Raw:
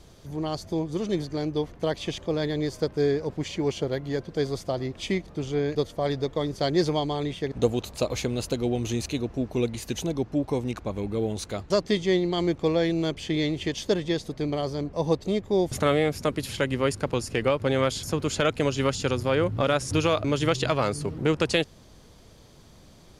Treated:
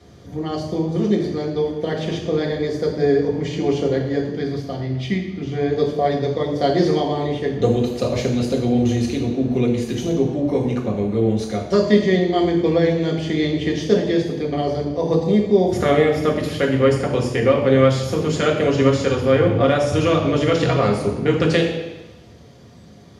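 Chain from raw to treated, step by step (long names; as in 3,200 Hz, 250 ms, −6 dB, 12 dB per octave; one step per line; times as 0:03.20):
0:04.30–0:05.52: octave-band graphic EQ 500/1,000/8,000 Hz −9/−4/−8 dB
convolution reverb RT60 1.0 s, pre-delay 3 ms, DRR −1.5 dB
level −5 dB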